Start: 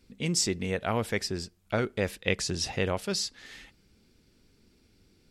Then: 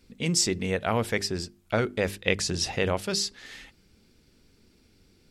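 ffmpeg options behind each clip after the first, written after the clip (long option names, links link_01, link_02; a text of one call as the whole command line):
ffmpeg -i in.wav -af "bandreject=frequency=50:width_type=h:width=6,bandreject=frequency=100:width_type=h:width=6,bandreject=frequency=150:width_type=h:width=6,bandreject=frequency=200:width_type=h:width=6,bandreject=frequency=250:width_type=h:width=6,bandreject=frequency=300:width_type=h:width=6,bandreject=frequency=350:width_type=h:width=6,bandreject=frequency=400:width_type=h:width=6,volume=3dB" out.wav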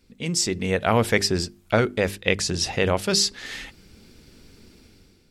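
ffmpeg -i in.wav -af "dynaudnorm=framelen=270:gausssize=5:maxgain=12dB,volume=-1dB" out.wav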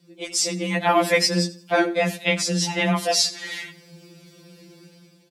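ffmpeg -i in.wav -af "afreqshift=92,aecho=1:1:86|172|258:0.126|0.0441|0.0154,afftfilt=real='re*2.83*eq(mod(b,8),0)':imag='im*2.83*eq(mod(b,8),0)':win_size=2048:overlap=0.75,volume=4dB" out.wav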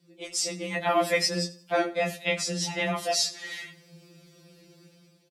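ffmpeg -i in.wav -filter_complex "[0:a]asplit=2[link_01][link_02];[link_02]adelay=19,volume=-7.5dB[link_03];[link_01][link_03]amix=inputs=2:normalize=0,volume=-6.5dB" out.wav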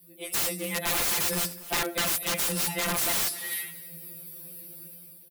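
ffmpeg -i in.wav -af "aexciter=amount=14.9:drive=9.9:freq=10000,aeval=exprs='(mod(11.9*val(0)+1,2)-1)/11.9':channel_layout=same,aecho=1:1:249|498:0.112|0.0292" out.wav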